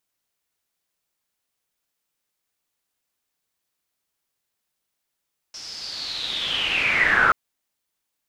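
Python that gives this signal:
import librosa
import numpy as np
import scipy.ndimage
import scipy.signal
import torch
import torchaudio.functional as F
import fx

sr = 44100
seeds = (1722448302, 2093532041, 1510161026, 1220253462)

y = fx.riser_noise(sr, seeds[0], length_s=1.78, colour='white', kind='lowpass', start_hz=5500.0, end_hz=1300.0, q=8.9, swell_db=27.5, law='linear')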